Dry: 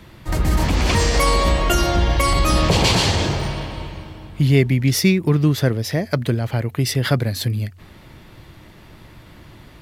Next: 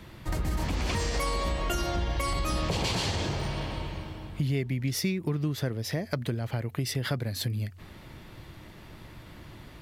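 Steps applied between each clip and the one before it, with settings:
downward compressor 3 to 1, threshold −25 dBFS, peak gain reduction 12 dB
level −3.5 dB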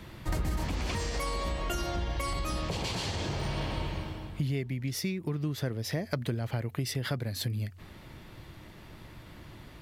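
speech leveller within 4 dB 0.5 s
level −2.5 dB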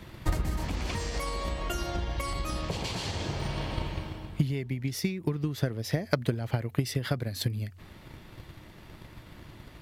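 transient designer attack +8 dB, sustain +1 dB
level −1 dB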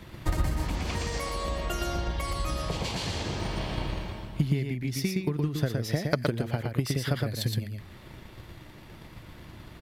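single-tap delay 117 ms −3.5 dB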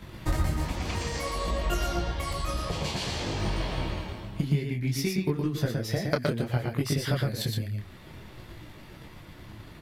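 micro pitch shift up and down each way 20 cents
level +4.5 dB

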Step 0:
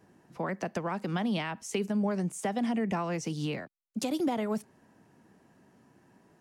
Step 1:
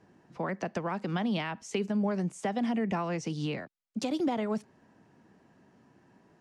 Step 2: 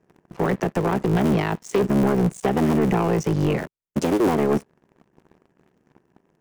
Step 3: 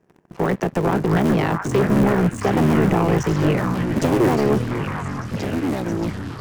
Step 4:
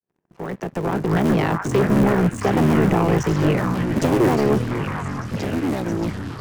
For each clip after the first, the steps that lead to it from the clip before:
low-pass filter 6,200 Hz 12 dB per octave
sub-harmonics by changed cycles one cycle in 3, muted; graphic EQ with 15 bands 160 Hz +7 dB, 400 Hz +8 dB, 4,000 Hz −9 dB; leveller curve on the samples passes 3
delay with pitch and tempo change per echo 336 ms, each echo −4 semitones, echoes 3, each echo −6 dB; echo through a band-pass that steps 670 ms, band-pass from 1,400 Hz, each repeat 0.7 octaves, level −1 dB; level +1.5 dB
fade in at the beginning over 1.32 s

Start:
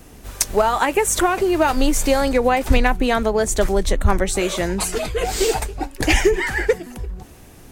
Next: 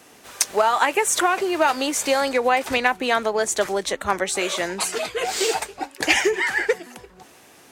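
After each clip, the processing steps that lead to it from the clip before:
meter weighting curve A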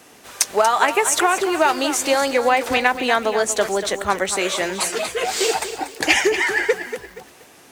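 feedback echo at a low word length 237 ms, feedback 35%, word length 7 bits, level −10.5 dB
level +2 dB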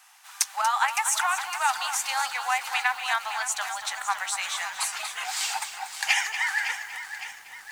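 Chebyshev high-pass filter 800 Hz, order 5
feedback echo at a low word length 560 ms, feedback 55%, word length 7 bits, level −10.5 dB
level −5.5 dB

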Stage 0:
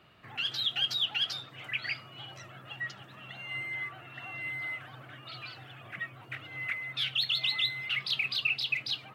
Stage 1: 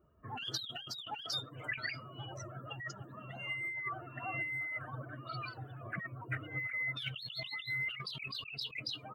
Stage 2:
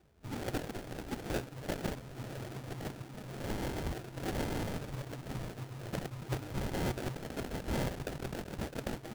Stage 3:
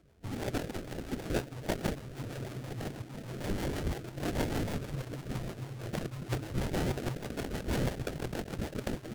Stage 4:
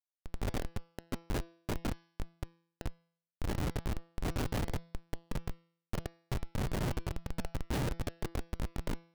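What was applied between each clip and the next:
spectral dynamics exaggerated over time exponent 2; compressor whose output falls as the input rises −45 dBFS, ratio −1; level +4.5 dB
sample-rate reduction 1,100 Hz, jitter 20%; level +3 dB
rotating-speaker cabinet horn 6.3 Hz; pitch modulation by a square or saw wave saw up 4 Hz, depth 160 cents; level +4.5 dB
comparator with hysteresis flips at −29.5 dBFS; hum removal 167.7 Hz, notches 34; level +4 dB

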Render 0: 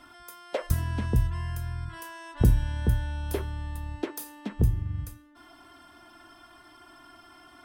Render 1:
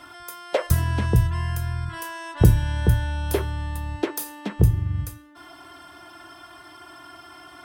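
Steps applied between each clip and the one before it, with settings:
high-pass filter 68 Hz
parametric band 240 Hz −11.5 dB 0.26 octaves
level +8 dB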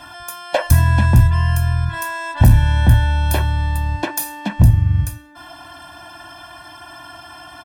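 gain into a clipping stage and back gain 14 dB
comb filter 1.2 ms, depth 90%
level +5 dB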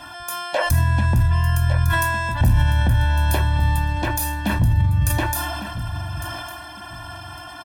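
brickwall limiter −11.5 dBFS, peak gain reduction 8 dB
repeating echo 1,155 ms, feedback 26%, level −11 dB
level that may fall only so fast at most 21 dB per second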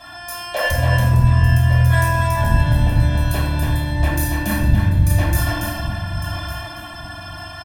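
in parallel at −5.5 dB: hard clipping −17.5 dBFS, distortion −11 dB
on the sum: single-tap delay 282 ms −4 dB
convolution reverb RT60 0.90 s, pre-delay 5 ms, DRR −3 dB
level −9.5 dB

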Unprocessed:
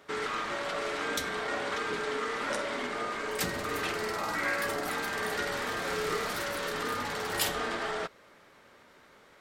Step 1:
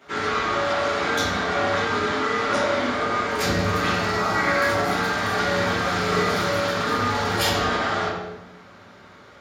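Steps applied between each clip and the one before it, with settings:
convolution reverb RT60 1.1 s, pre-delay 3 ms, DRR −9 dB
level −3.5 dB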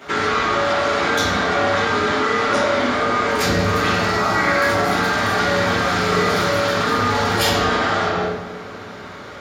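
in parallel at −3 dB: compressor whose output falls as the input rises −32 dBFS, ratio −1
on the sum: feedback echo with a band-pass in the loop 249 ms, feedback 75%, band-pass 350 Hz, level −14 dB
level +2.5 dB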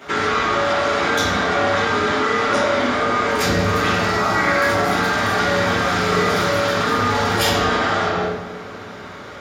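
notch filter 4,300 Hz, Q 25

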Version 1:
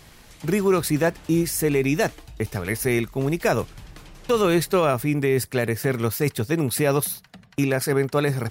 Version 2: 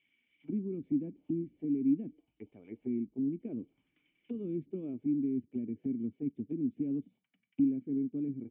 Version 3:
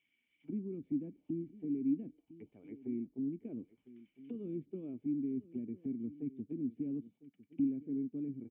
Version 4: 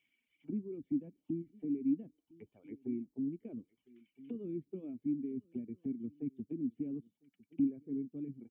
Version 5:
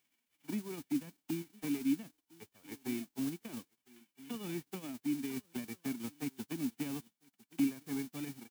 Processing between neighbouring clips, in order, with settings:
formant resonators in series i; envelope filter 250–2,200 Hz, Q 2, down, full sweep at −28.5 dBFS; level −1.5 dB
single-tap delay 1,004 ms −17.5 dB; level −4.5 dB
reverb reduction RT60 1.4 s; level +1.5 dB
spectral envelope flattened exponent 0.3

